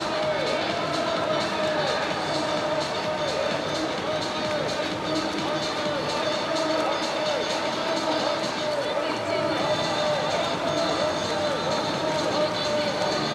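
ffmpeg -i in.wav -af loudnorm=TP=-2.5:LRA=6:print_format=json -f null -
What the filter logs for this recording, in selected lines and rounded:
"input_i" : "-25.3",
"input_tp" : "-12.6",
"input_lra" : "1.4",
"input_thresh" : "-35.3",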